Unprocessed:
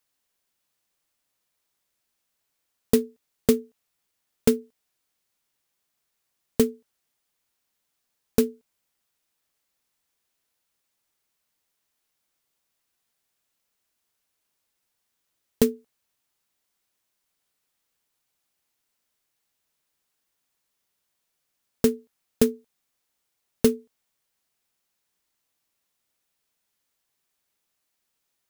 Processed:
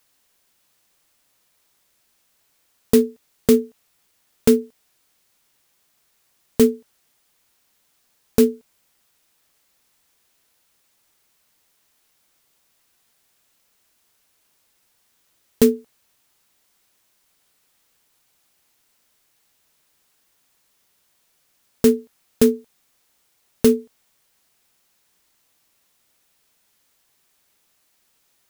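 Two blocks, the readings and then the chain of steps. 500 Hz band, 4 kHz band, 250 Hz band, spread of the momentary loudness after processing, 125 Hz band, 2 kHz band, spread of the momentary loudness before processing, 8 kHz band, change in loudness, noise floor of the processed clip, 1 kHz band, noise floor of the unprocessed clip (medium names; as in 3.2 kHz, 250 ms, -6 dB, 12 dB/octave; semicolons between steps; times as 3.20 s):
+6.5 dB, +4.0 dB, +6.5 dB, 11 LU, +2.5 dB, +4.0 dB, 7 LU, +4.0 dB, +5.5 dB, -66 dBFS, +3.5 dB, -79 dBFS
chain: loudness maximiser +14 dB; trim -1.5 dB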